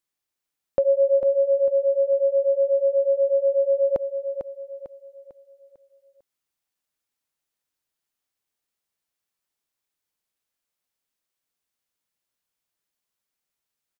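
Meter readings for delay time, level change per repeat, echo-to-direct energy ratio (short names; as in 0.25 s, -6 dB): 0.449 s, -8.0 dB, -7.0 dB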